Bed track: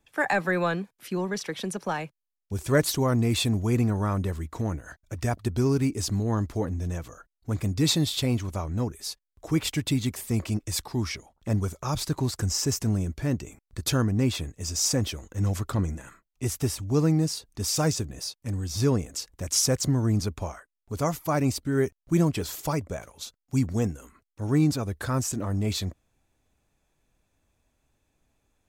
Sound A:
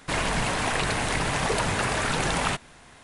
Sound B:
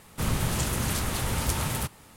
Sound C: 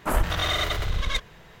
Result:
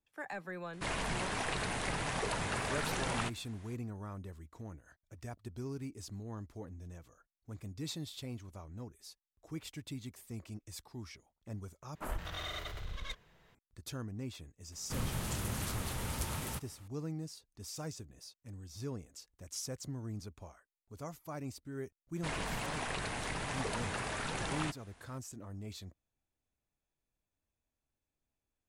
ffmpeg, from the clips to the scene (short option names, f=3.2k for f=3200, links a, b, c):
-filter_complex "[1:a]asplit=2[a][b];[0:a]volume=-18dB,asplit=2[c][d];[c]atrim=end=11.954[e];[3:a]atrim=end=1.6,asetpts=PTS-STARTPTS,volume=-16dB[f];[d]atrim=start=13.546[g];[a]atrim=end=3.03,asetpts=PTS-STARTPTS,volume=-10.5dB,afade=t=in:d=0.004:c=hsin,afade=t=out:st=3.026:d=0.004:c=hsin,adelay=730[h];[2:a]atrim=end=2.16,asetpts=PTS-STARTPTS,volume=-10dB,afade=t=in:d=0.004:c=hsin,afade=t=out:st=2.156:d=0.004:c=hsin,adelay=14720[i];[b]atrim=end=3.03,asetpts=PTS-STARTPTS,volume=-12.5dB,afade=t=in:d=0.004:c=hsin,afade=t=out:st=3.026:d=0.004:c=hsin,adelay=22150[j];[e][f]acrossfade=d=0.004:c1=hsin:c2=hsin[k];[k][g]acrossfade=d=0.004:c1=hsin:c2=hsin[l];[l][h][i][j]amix=inputs=4:normalize=0"